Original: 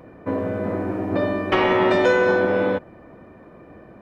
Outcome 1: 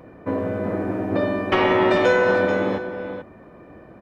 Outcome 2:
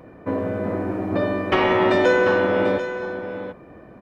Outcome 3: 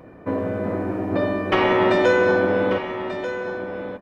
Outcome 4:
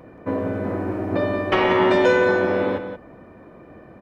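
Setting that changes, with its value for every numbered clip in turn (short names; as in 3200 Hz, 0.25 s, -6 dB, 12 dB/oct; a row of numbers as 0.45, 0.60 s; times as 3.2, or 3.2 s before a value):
echo, time: 0.437, 0.741, 1.189, 0.178 s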